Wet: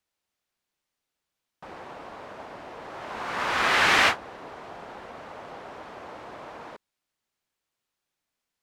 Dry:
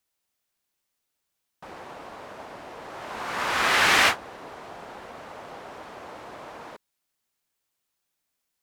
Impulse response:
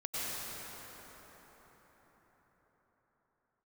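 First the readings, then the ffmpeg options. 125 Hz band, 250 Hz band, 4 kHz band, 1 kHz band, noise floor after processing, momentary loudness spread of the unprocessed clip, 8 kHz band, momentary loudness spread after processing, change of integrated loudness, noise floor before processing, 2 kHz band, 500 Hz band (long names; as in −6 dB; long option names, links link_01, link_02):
0.0 dB, 0.0 dB, −1.5 dB, 0.0 dB, −85 dBFS, 23 LU, −5.0 dB, 22 LU, −1.0 dB, −81 dBFS, −0.5 dB, 0.0 dB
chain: -af "highshelf=frequency=7700:gain=-11"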